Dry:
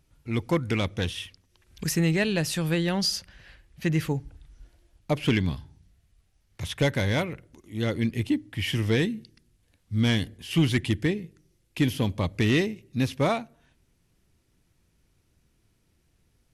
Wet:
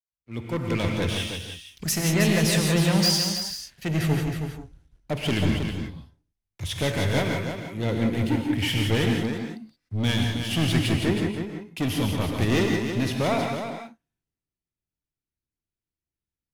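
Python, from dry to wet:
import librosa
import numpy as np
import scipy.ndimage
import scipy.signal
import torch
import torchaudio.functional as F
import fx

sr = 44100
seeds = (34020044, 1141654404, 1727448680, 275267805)

p1 = fx.fade_in_head(x, sr, length_s=0.82)
p2 = fx.leveller(p1, sr, passes=3)
p3 = p2 + fx.echo_single(p2, sr, ms=319, db=-6.0, dry=0)
p4 = fx.rev_gated(p3, sr, seeds[0], gate_ms=200, shape='rising', drr_db=2.0)
p5 = fx.band_widen(p4, sr, depth_pct=40)
y = p5 * librosa.db_to_amplitude(-7.0)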